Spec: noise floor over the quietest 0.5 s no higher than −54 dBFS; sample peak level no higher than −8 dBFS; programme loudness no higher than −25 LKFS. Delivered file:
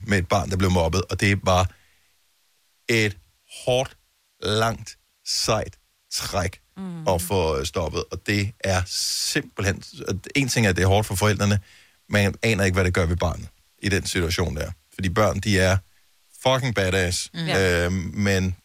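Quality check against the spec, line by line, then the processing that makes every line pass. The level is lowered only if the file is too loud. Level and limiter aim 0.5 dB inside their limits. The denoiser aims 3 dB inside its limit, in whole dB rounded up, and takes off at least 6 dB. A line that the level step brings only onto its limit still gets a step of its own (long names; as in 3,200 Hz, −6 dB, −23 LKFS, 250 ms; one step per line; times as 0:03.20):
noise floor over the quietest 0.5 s −65 dBFS: in spec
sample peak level −6.5 dBFS: out of spec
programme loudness −23.0 LKFS: out of spec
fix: level −2.5 dB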